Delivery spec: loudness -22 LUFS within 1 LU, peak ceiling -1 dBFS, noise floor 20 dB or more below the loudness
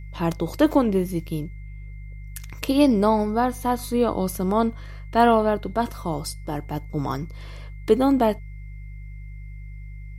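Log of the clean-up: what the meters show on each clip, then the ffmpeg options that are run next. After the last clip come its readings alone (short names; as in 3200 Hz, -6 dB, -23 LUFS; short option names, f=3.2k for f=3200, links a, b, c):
hum 50 Hz; harmonics up to 150 Hz; hum level -34 dBFS; steady tone 2100 Hz; tone level -53 dBFS; loudness -23.0 LUFS; peak -5.5 dBFS; loudness target -22.0 LUFS
-> -af "bandreject=f=50:t=h:w=4,bandreject=f=100:t=h:w=4,bandreject=f=150:t=h:w=4"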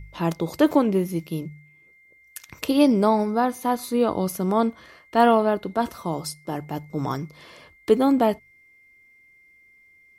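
hum none; steady tone 2100 Hz; tone level -53 dBFS
-> -af "bandreject=f=2.1k:w=30"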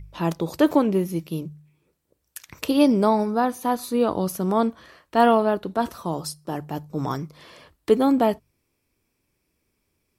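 steady tone none; loudness -23.0 LUFS; peak -5.5 dBFS; loudness target -22.0 LUFS
-> -af "volume=1dB"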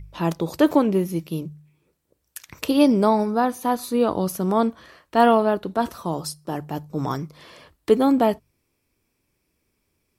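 loudness -22.0 LUFS; peak -4.5 dBFS; noise floor -73 dBFS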